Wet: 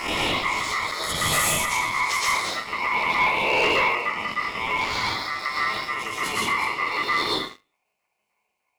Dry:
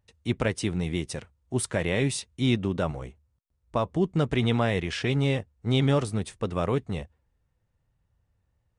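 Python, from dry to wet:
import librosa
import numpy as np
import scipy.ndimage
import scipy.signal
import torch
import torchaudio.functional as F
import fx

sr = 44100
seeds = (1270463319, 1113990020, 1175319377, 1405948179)

p1 = fx.spec_swells(x, sr, rise_s=0.99)
p2 = fx.env_phaser(p1, sr, low_hz=320.0, high_hz=2800.0, full_db=-18.0)
p3 = p2 + fx.echo_single(p2, sr, ms=243, db=-7.5, dry=0)
p4 = fx.over_compress(p3, sr, threshold_db=-36.0, ratio=-1.0)
p5 = fx.low_shelf(p4, sr, hz=130.0, db=4.5)
p6 = fx.level_steps(p5, sr, step_db=14)
p7 = p5 + (p6 * 10.0 ** (-3.0 / 20.0))
p8 = fx.hum_notches(p7, sr, base_hz=50, count=10)
p9 = fx.filter_lfo_highpass(p8, sr, shape='saw_up', hz=3.3, low_hz=370.0, high_hz=2300.0, q=2.5)
p10 = fx.rev_plate(p9, sr, seeds[0], rt60_s=0.54, hf_ratio=0.75, predelay_ms=105, drr_db=-5.5)
p11 = fx.leveller(p10, sr, passes=3)
p12 = p11 * np.sin(2.0 * np.pi * 1600.0 * np.arange(len(p11)) / sr)
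y = p12 * 10.0 ** (-2.5 / 20.0)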